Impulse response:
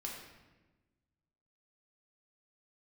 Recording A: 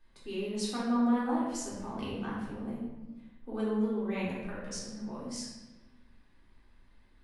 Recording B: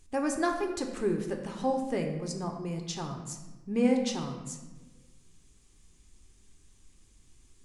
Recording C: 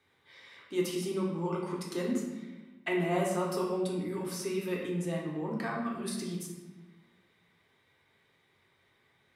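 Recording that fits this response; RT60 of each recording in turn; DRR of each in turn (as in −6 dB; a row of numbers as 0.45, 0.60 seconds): C; 1.2, 1.2, 1.2 seconds; −7.5, 3.0, −2.5 decibels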